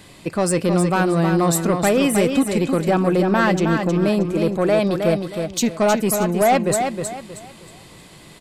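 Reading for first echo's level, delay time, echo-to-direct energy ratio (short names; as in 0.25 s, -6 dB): -6.0 dB, 0.315 s, -5.5 dB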